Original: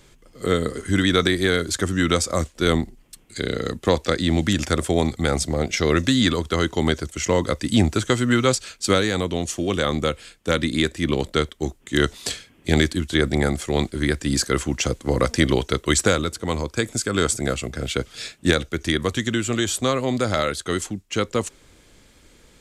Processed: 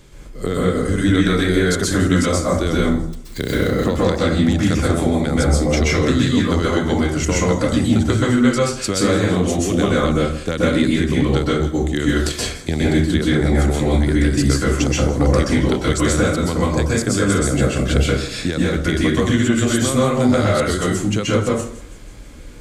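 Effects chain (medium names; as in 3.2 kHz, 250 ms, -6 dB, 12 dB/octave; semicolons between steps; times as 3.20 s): 2.79–3.75 s: dead-time distortion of 0.054 ms; bass shelf 400 Hz +6.5 dB; compression, threshold -20 dBFS, peak gain reduction 13 dB; on a send: feedback echo behind a high-pass 164 ms, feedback 63%, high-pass 5.3 kHz, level -15 dB; on the sum: plate-style reverb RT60 0.61 s, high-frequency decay 0.5×, pre-delay 115 ms, DRR -6 dB; trim +1.5 dB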